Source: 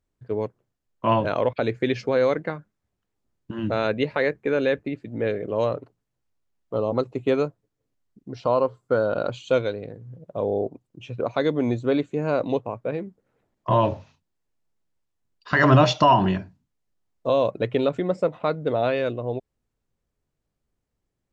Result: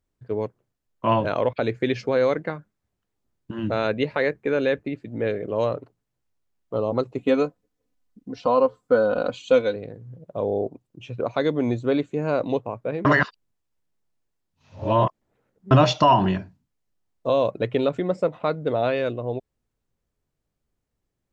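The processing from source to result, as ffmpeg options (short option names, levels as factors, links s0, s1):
-filter_complex "[0:a]asettb=1/sr,asplit=3[s0][s1][s2];[s0]atrim=end=7.184[s3];[s1]atrim=start=7.18:end=9.76,asetpts=PTS-STARTPTS,afade=t=in:d=0.004:c=qsin,afade=t=out:st=2.576:d=0.004:c=qsin,aecho=1:1:4:0.65,atrim=end_sample=113778[s4];[s2]atrim=start=9.756[s5];[s3][s4]acrossfade=d=0.004:c1=hsin:c2=qsin[s6];[s6][s5]acrossfade=d=0.004:c1=qsin:c2=hsin,asplit=3[s7][s8][s9];[s7]atrim=end=13.052[s10];[s8]atrim=start=13.048:end=15.712,asetpts=PTS-STARTPTS,areverse[s11];[s9]atrim=start=15.708[s12];[s10][s11]acrossfade=d=0.004:c1=hsin:c2=hsin[s13];[s13][s12]acrossfade=d=0.004:c1=hsin:c2=hsin"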